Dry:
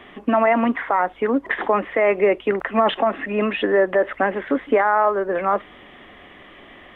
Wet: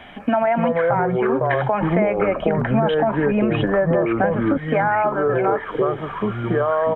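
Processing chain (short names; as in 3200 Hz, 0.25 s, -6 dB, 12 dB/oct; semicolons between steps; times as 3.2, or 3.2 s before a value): comb 1.3 ms, depth 64%; echoes that change speed 0.202 s, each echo -5 st, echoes 2; 1.81–4.58 low shelf 370 Hz +11.5 dB; compressor, threshold -18 dBFS, peak gain reduction 12.5 dB; gain +2.5 dB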